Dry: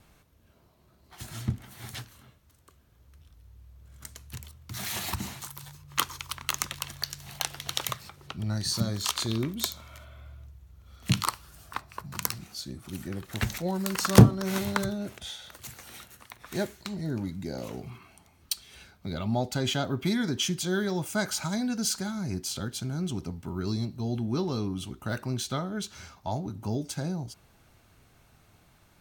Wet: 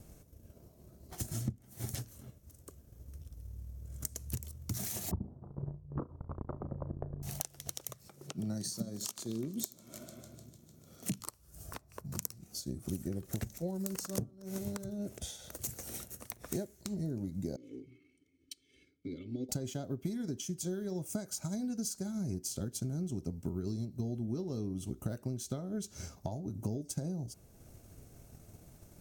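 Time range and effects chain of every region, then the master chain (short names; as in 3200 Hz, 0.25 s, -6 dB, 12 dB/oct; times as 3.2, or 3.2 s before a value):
5.11–7.23 sample leveller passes 3 + Gaussian blur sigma 10 samples + flutter echo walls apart 6 m, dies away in 0.23 s
8.08–11.2 HPF 140 Hz 24 dB/oct + warbling echo 0.15 s, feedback 72%, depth 62 cents, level -22 dB
17.56–19.49 vowel filter i + comb 2.3 ms, depth 86%
whole clip: transient shaper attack +5 dB, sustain -4 dB; compressor 16:1, threshold -38 dBFS; band shelf 1900 Hz -13 dB 2.7 oct; gain +5.5 dB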